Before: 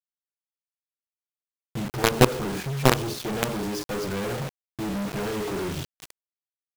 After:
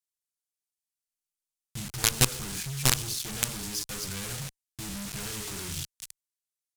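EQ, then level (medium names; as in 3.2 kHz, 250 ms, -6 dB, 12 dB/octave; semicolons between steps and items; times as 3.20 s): amplifier tone stack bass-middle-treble 5-5-5; bass shelf 160 Hz +11 dB; peaking EQ 8.8 kHz +10.5 dB 2 oct; +3.0 dB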